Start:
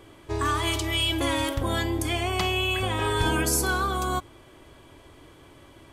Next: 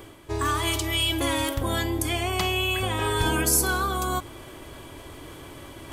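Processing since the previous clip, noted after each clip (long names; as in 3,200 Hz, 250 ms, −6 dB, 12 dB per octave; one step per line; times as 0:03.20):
high-shelf EQ 11,000 Hz +11 dB
reversed playback
upward compression, threshold −32 dBFS
reversed playback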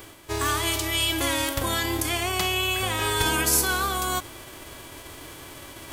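spectral envelope flattened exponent 0.6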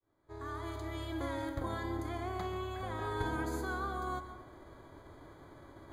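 fade in at the beginning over 0.89 s
moving average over 16 samples
convolution reverb RT60 0.65 s, pre-delay 117 ms, DRR 10 dB
level −9 dB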